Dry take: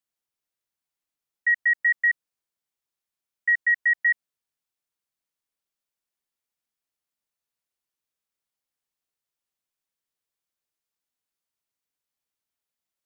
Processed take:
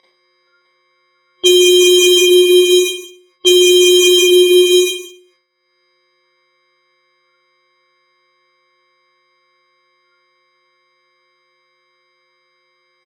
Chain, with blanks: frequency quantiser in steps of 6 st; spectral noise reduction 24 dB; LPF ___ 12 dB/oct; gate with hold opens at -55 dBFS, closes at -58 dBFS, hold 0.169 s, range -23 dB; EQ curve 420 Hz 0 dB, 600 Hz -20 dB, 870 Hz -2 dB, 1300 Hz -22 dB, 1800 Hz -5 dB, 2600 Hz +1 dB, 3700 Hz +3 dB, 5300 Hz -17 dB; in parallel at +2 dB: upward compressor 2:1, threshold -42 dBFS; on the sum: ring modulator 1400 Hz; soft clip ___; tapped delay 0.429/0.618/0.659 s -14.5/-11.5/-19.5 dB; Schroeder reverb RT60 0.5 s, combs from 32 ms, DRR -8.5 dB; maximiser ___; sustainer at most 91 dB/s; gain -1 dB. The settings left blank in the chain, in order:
1800 Hz, -31.5 dBFS, +27.5 dB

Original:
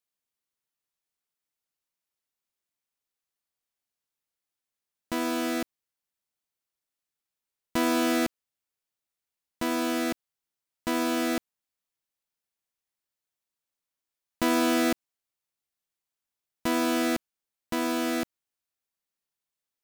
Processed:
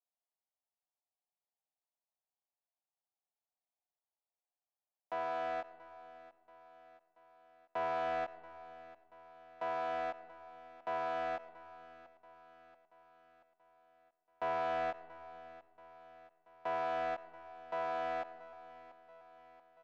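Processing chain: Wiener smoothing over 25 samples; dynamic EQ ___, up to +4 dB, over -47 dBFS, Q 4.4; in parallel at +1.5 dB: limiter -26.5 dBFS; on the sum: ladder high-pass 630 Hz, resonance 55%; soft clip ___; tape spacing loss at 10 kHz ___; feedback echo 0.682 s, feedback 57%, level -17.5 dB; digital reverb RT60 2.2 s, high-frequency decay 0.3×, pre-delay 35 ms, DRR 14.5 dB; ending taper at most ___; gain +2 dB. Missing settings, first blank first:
1600 Hz, -27.5 dBFS, 37 dB, 390 dB/s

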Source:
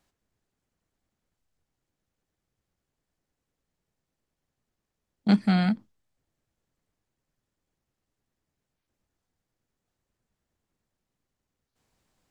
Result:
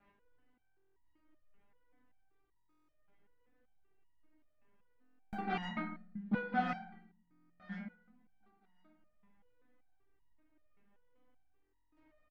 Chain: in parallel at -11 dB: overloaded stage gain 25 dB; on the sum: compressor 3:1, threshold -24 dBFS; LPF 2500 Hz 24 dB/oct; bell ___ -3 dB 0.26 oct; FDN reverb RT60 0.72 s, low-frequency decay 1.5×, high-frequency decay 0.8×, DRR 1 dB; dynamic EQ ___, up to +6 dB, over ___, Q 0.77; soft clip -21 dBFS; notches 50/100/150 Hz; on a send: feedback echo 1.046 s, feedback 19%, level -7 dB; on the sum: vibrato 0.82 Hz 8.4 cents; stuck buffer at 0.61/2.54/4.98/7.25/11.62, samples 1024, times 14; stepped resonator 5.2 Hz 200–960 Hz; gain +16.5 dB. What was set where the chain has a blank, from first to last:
79 Hz, 1100 Hz, -47 dBFS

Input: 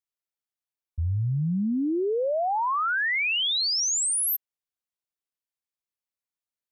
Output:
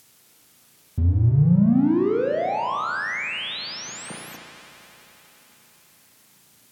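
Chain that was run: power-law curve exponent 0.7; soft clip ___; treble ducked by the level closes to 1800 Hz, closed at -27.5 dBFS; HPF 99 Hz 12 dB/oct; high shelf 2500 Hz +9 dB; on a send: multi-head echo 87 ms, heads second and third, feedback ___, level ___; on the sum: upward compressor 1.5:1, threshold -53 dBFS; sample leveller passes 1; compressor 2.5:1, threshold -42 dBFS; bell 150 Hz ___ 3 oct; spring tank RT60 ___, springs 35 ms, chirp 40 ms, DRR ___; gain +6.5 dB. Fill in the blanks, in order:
-25.5 dBFS, 70%, -22 dB, +13 dB, 1.3 s, 1.5 dB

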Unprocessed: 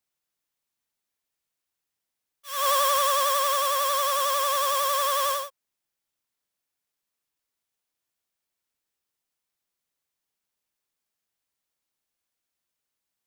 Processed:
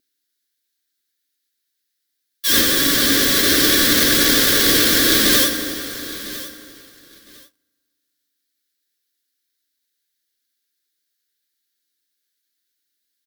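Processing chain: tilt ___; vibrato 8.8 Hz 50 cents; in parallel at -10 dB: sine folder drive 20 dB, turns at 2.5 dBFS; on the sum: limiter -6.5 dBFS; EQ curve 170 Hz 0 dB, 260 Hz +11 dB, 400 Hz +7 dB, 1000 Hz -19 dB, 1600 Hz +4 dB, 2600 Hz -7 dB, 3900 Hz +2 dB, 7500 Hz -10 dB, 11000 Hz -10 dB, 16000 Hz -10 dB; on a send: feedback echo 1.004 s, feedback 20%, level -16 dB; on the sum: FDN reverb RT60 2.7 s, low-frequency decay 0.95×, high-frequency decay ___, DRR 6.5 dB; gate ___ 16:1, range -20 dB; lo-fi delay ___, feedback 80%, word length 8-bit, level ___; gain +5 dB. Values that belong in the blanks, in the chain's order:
+5 dB/oct, 0.35×, -49 dBFS, 89 ms, -15 dB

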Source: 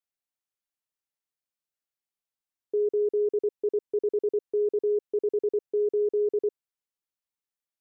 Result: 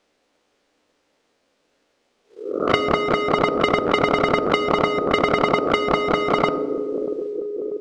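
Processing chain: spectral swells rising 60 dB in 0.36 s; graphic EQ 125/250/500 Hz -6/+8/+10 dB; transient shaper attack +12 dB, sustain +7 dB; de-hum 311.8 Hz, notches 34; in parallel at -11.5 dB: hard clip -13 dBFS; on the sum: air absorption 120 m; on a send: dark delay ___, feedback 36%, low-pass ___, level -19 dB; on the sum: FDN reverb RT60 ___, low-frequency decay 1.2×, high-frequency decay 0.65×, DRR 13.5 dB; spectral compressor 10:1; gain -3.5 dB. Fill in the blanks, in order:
0.639 s, 520 Hz, 1.3 s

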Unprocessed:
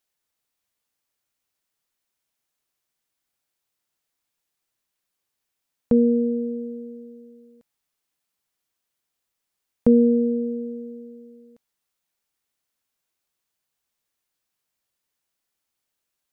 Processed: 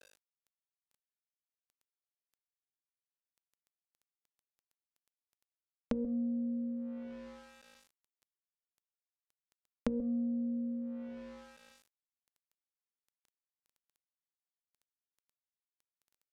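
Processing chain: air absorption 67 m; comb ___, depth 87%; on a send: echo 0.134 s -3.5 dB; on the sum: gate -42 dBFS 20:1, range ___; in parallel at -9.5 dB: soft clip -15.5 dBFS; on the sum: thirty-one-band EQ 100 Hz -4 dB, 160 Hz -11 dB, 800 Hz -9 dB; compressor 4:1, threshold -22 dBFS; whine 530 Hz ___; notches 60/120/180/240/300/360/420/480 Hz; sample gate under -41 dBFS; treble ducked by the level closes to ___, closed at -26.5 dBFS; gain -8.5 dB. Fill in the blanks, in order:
3.6 ms, -18 dB, -41 dBFS, 600 Hz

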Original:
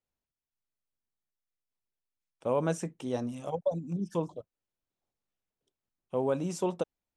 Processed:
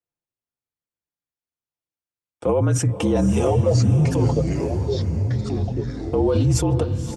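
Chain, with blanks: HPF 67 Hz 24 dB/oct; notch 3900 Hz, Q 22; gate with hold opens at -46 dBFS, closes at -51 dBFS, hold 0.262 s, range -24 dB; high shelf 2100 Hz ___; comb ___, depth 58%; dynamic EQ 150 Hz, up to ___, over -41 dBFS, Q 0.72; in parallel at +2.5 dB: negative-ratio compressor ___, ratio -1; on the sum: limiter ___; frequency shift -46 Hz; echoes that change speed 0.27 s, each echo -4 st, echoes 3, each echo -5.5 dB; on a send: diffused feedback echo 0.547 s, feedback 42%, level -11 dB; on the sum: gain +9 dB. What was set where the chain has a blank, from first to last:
-5.5 dB, 5.5 ms, +6 dB, -35 dBFS, -21 dBFS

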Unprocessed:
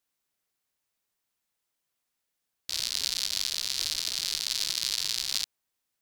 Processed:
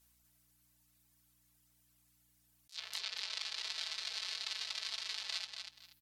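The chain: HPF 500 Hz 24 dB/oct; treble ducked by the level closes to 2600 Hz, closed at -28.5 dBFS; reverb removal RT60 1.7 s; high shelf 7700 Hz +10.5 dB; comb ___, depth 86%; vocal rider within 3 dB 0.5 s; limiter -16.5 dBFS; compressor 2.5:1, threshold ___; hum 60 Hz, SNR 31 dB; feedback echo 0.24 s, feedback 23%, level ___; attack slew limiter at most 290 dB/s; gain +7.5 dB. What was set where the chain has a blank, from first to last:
4.6 ms, -49 dBFS, -6 dB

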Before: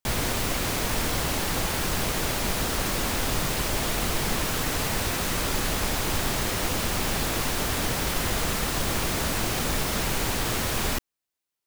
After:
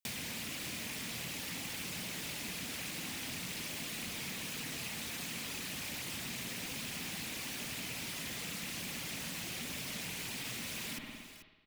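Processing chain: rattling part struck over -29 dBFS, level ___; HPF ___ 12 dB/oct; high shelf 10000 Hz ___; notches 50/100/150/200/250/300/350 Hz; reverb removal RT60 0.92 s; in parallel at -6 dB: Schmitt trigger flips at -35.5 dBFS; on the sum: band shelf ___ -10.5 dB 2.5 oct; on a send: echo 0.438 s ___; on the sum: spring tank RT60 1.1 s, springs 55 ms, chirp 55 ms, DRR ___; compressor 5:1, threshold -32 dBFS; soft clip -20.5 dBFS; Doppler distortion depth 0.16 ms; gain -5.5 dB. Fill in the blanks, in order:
-22 dBFS, 170 Hz, +3.5 dB, 720 Hz, -19.5 dB, 4 dB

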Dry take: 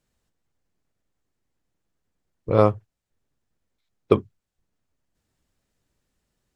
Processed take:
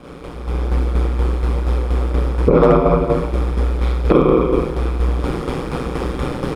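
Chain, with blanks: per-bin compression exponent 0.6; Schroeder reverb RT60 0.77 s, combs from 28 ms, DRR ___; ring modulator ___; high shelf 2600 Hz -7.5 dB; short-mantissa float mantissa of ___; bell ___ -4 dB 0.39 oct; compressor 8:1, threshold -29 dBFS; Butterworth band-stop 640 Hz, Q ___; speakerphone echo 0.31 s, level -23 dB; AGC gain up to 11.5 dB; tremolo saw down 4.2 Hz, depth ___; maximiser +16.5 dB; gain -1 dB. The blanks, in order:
-9 dB, 61 Hz, 8-bit, 96 Hz, 6.2, 55%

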